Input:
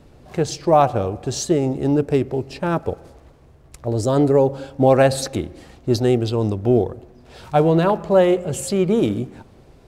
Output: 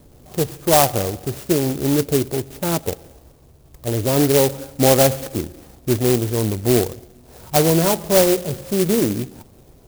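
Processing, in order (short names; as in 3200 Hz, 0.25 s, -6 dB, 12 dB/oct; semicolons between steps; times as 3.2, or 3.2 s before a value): LPF 3000 Hz 12 dB/oct; clock jitter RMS 0.14 ms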